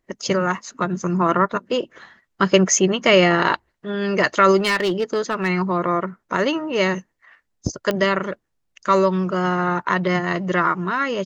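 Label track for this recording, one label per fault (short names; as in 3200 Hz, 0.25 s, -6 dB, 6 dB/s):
4.570000	5.500000	clipped -15.5 dBFS
7.910000	7.910000	pop -9 dBFS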